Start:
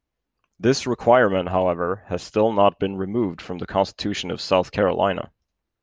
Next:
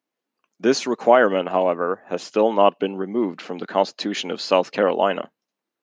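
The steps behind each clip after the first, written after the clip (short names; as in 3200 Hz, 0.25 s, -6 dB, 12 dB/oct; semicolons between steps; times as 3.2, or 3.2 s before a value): HPF 210 Hz 24 dB/oct; gain +1 dB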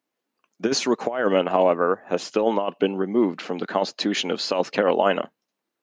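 negative-ratio compressor -18 dBFS, ratio -0.5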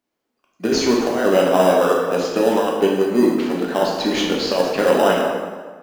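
in parallel at -8 dB: sample-and-hold 20×; on the sum: plate-style reverb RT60 1.5 s, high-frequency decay 0.7×, DRR -2.5 dB; gain -1.5 dB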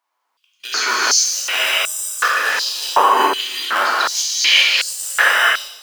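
non-linear reverb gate 0.43 s rising, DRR -4 dB; stepped high-pass 2.7 Hz 980–7900 Hz; gain +2.5 dB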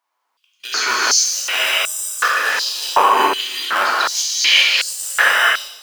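rattling part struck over -38 dBFS, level -16 dBFS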